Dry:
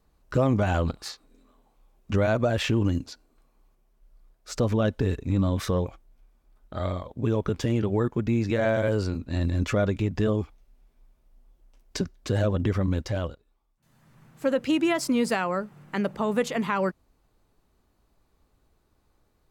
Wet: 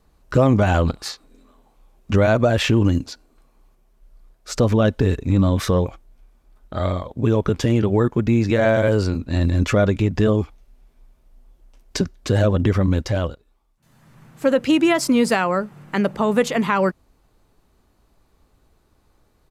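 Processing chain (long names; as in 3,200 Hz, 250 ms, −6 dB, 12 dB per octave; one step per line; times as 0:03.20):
downsampling to 32,000 Hz
level +7 dB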